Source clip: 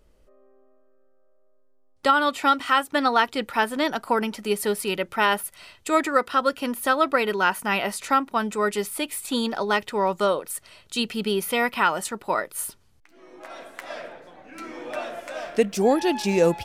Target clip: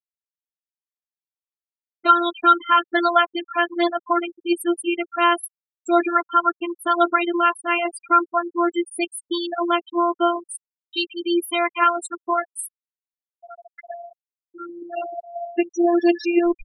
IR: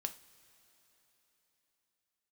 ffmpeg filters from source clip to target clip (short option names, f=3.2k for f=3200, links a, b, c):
-af "afftfilt=real='hypot(re,im)*cos(PI*b)':imag='0':win_size=512:overlap=0.75,afftfilt=real='re*gte(hypot(re,im),0.0708)':imag='im*gte(hypot(re,im),0.0708)':win_size=1024:overlap=0.75,volume=7dB"